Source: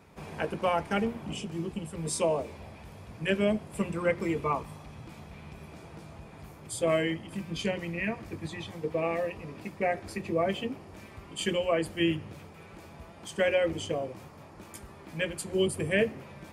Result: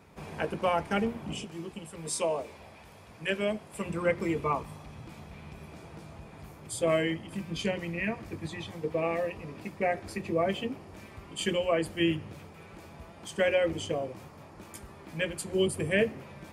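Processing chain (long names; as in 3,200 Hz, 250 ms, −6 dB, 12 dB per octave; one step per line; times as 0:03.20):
0:01.44–0:03.86: low-shelf EQ 330 Hz −9.5 dB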